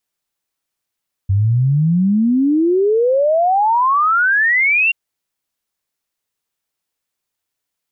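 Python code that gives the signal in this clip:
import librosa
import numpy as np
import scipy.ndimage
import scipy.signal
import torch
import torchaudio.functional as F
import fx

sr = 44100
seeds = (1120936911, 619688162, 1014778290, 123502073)

y = fx.ess(sr, length_s=3.63, from_hz=94.0, to_hz=2800.0, level_db=-11.0)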